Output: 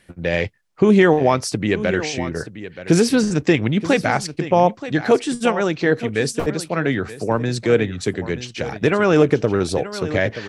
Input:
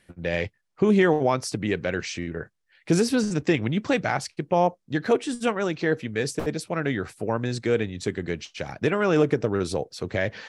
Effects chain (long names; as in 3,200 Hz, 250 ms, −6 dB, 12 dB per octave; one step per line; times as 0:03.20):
single-tap delay 927 ms −13.5 dB
0:06.32–0:08.37: multiband upward and downward expander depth 40%
level +6 dB